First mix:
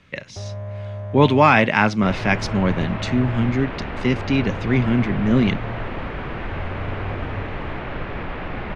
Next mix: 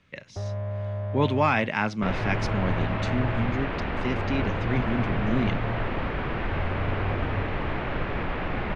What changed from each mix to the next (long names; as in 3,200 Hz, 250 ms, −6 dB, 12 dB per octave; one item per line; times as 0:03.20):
speech −9.0 dB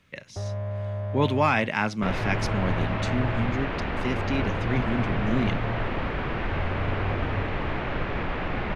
master: remove high-frequency loss of the air 64 metres